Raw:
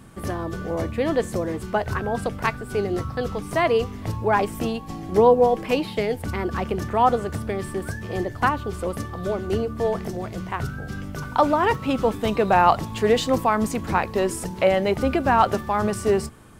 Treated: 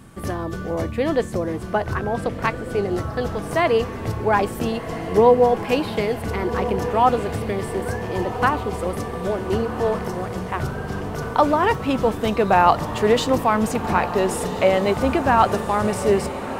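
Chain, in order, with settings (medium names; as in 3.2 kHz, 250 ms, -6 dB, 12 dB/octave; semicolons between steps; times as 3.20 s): 1.23–2.91 s: treble shelf 4.8 kHz -6 dB; on a send: echo that smears into a reverb 1444 ms, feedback 67%, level -11 dB; on the sum: trim +1.5 dB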